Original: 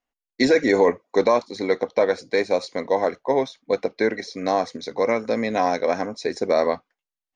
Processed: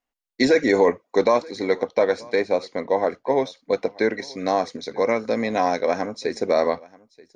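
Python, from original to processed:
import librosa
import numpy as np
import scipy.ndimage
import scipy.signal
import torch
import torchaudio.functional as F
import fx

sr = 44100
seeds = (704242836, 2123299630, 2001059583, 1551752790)

y = fx.high_shelf(x, sr, hz=4700.0, db=-10.0, at=(2.35, 3.32))
y = y + 10.0 ** (-23.5 / 20.0) * np.pad(y, (int(932 * sr / 1000.0), 0))[:len(y)]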